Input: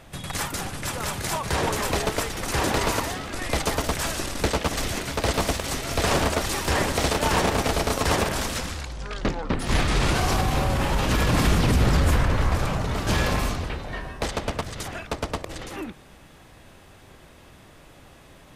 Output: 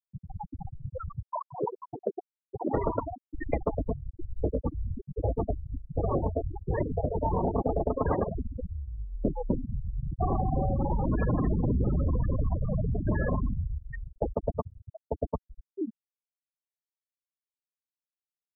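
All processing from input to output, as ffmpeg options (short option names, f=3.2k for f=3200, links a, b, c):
-filter_complex "[0:a]asettb=1/sr,asplit=3[a][b][c];[a]atrim=end=1.254[d];[b]atrim=start=1.25:end=2.73,asetpts=PTS-STARTPTS,afade=t=in:d=0.004:c=qsin,afade=t=out:st=1.476:d=0.004:c=qsin,highpass=88,lowshelf=f=120:g=-7.5,aeval=exprs='val(0)*sin(2*PI*38*n/s)':c=same[e];[c]atrim=start=2.726[f];[d][e]acrossfade=d=0.004:c1=hsin:c2=qsin[g];[g][f]acrossfade=d=0.004:c1=qsin:c2=hsin,asettb=1/sr,asplit=3[h][i][j];[h]atrim=end=3.754[k];[i]atrim=start=3.75:end=7.56,asetpts=PTS-STARTPTS,afade=t=in:d=0.004:c=qsin,afade=t=out:st=3.806:d=0.004:c=qsin,lowshelf=f=120:g=4.5,flanger=delay=19.5:depth=2.8:speed=1.3[l];[j]atrim=start=7.556[m];[k][l]acrossfade=d=0.004:c1=hsin:c2=qsin[n];[n][m]acrossfade=d=0.004:c1=qsin:c2=hsin,asettb=1/sr,asplit=3[o][p][q];[o]atrim=end=9.664[r];[p]atrim=start=9.66:end=10.21,asetpts=PTS-STARTPTS,afade=t=in:d=0.004:c=qsin,afade=t=out:st=0.546:d=0.004:c=qsin,acompressor=threshold=-22dB:ratio=10:attack=3.2:release=140:knee=1:detection=peak,tremolo=f=83:d=0.788[s];[q]atrim=start=10.206[t];[r][s]acrossfade=d=0.004:c1=hsin:c2=qsin[u];[u][t]acrossfade=d=0.004:c1=qsin:c2=hsin,afftfilt=real='re*gte(hypot(re,im),0.178)':imag='im*gte(hypot(re,im),0.178)':win_size=1024:overlap=0.75,equalizer=f=390:w=0.46:g=4,acompressor=threshold=-23dB:ratio=6"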